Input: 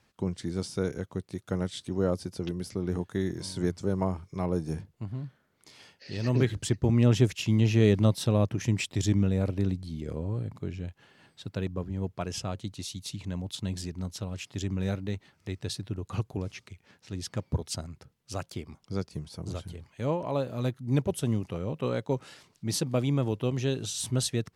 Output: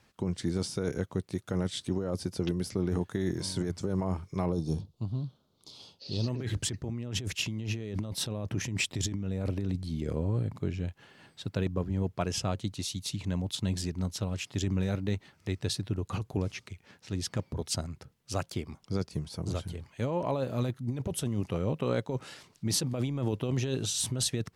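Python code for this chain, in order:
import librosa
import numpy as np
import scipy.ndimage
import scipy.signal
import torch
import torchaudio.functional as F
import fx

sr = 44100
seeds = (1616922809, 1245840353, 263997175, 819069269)

y = fx.curve_eq(x, sr, hz=(120.0, 1200.0, 1800.0, 3700.0, 7900.0), db=(0, -4, -25, 6, -5), at=(4.52, 6.28))
y = fx.over_compress(y, sr, threshold_db=-30.0, ratio=-1.0)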